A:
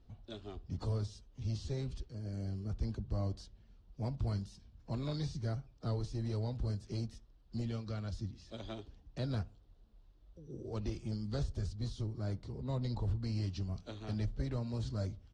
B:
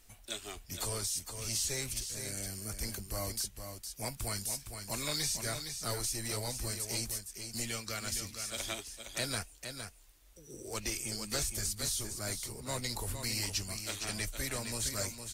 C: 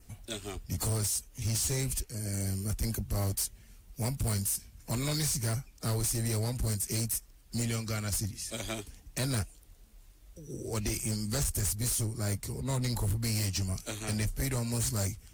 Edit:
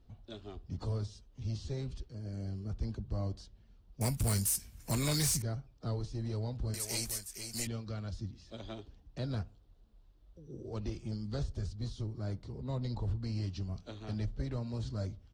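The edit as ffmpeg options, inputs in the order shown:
-filter_complex "[0:a]asplit=3[s0][s1][s2];[s0]atrim=end=4.012[s3];[2:a]atrim=start=4.008:end=5.422[s4];[s1]atrim=start=5.418:end=6.742[s5];[1:a]atrim=start=6.738:end=7.672[s6];[s2]atrim=start=7.668[s7];[s3][s4]acrossfade=d=0.004:c1=hsin:c2=hsin[s8];[s8][s5]acrossfade=d=0.004:c1=hsin:c2=hsin[s9];[s9][s6]acrossfade=d=0.004:c1=hsin:c2=hsin[s10];[s10][s7]acrossfade=d=0.004:c1=hsin:c2=hsin"

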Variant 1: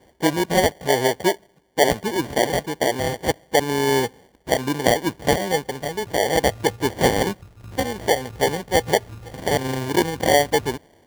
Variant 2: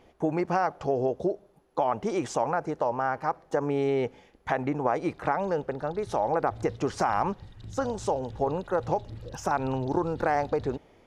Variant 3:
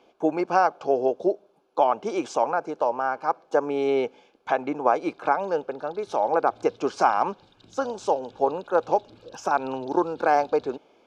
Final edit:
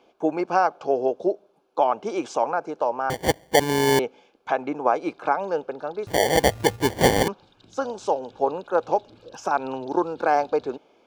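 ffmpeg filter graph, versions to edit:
-filter_complex "[0:a]asplit=2[s0][s1];[2:a]asplit=3[s2][s3][s4];[s2]atrim=end=3.102[s5];[s0]atrim=start=3.098:end=3.992[s6];[s3]atrim=start=3.988:end=6.072[s7];[s1]atrim=start=6.068:end=7.282[s8];[s4]atrim=start=7.278[s9];[s5][s6]acrossfade=d=0.004:c1=hsin:c2=hsin[s10];[s10][s7]acrossfade=d=0.004:c1=hsin:c2=hsin[s11];[s11][s8]acrossfade=d=0.004:c1=hsin:c2=hsin[s12];[s12][s9]acrossfade=d=0.004:c1=hsin:c2=hsin"

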